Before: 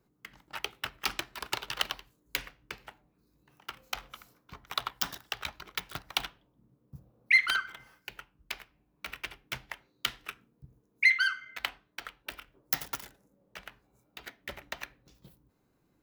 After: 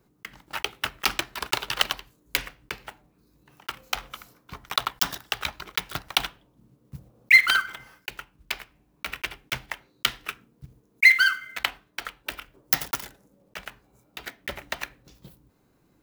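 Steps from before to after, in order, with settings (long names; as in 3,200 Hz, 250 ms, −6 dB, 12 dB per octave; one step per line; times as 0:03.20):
one scale factor per block 5 bits
level +7.5 dB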